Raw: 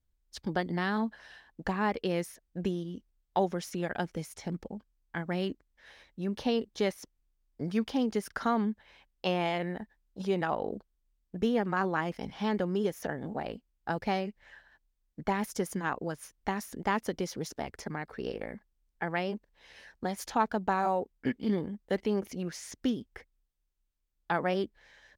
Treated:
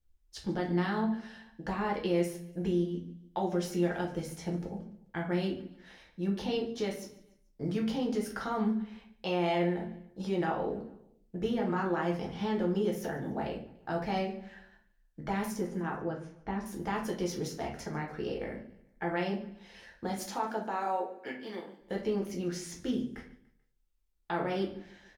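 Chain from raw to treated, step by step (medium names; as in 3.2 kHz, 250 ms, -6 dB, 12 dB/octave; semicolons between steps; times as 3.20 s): 20.25–21.79 s: high-pass 210 Hz -> 810 Hz 12 dB/octave; peak limiter -22.5 dBFS, peak gain reduction 9 dB; 15.56–16.66 s: tape spacing loss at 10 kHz 25 dB; feedback delay 145 ms, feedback 45%, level -20.5 dB; simulated room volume 37 m³, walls mixed, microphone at 0.73 m; trim -3.5 dB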